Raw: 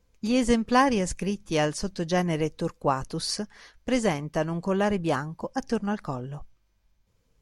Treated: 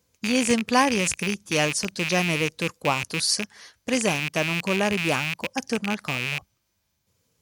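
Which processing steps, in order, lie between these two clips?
rattle on loud lows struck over -38 dBFS, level -18 dBFS; high-pass 76 Hz 24 dB/octave; treble shelf 4.3 kHz +11.5 dB

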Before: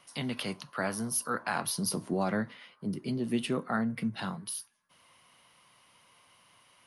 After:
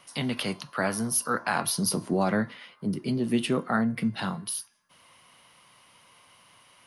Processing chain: de-hum 347.2 Hz, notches 20; trim +5 dB

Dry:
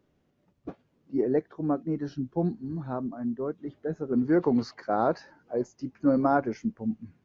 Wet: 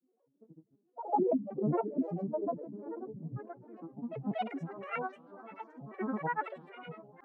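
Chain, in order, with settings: vocoder on a broken chord bare fifth, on B3, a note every 84 ms; pre-echo 179 ms -12 dB; band-pass sweep 500 Hz -> 1.2 kHz, 2.93–3.62 s; on a send: echo that smears into a reverb 479 ms, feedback 53%, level -14 dB; on the sum: granulator, grains 20 per s, pitch spread up and down by 12 st; trim +5 dB

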